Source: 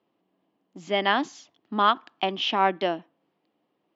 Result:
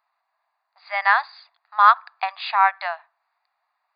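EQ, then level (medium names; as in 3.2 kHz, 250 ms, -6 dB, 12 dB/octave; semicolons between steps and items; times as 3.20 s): brick-wall FIR band-pass 510–4900 Hz; treble shelf 3.1 kHz +12 dB; static phaser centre 1.3 kHz, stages 4; +7.0 dB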